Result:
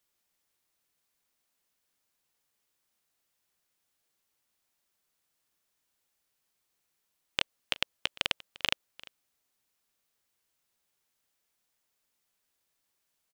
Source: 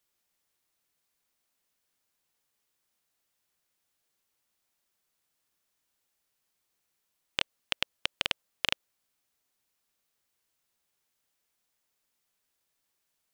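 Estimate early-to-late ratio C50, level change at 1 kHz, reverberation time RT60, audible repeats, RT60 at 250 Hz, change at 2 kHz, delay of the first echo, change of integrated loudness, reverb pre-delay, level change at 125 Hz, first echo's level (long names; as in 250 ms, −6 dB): no reverb audible, 0.0 dB, no reverb audible, 1, no reverb audible, 0.0 dB, 348 ms, 0.0 dB, no reverb audible, 0.0 dB, −21.0 dB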